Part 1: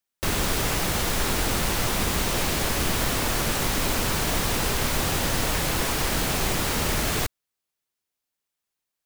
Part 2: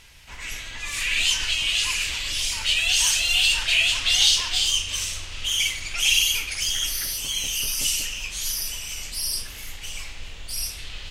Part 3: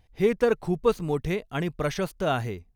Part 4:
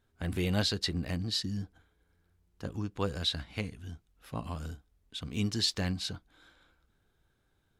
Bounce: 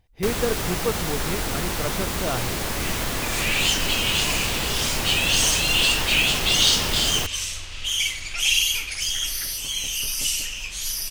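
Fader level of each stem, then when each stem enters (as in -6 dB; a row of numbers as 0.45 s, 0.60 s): -2.0 dB, -0.5 dB, -3.0 dB, mute; 0.00 s, 2.40 s, 0.00 s, mute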